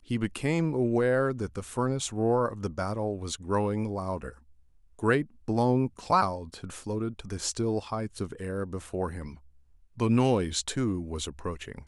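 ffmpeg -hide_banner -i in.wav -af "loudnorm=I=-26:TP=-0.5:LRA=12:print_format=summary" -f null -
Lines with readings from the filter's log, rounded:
Input Integrated:    -29.4 LUFS
Input True Peak:     -10.6 dBTP
Input LRA:             2.5 LU
Input Threshold:     -39.9 LUFS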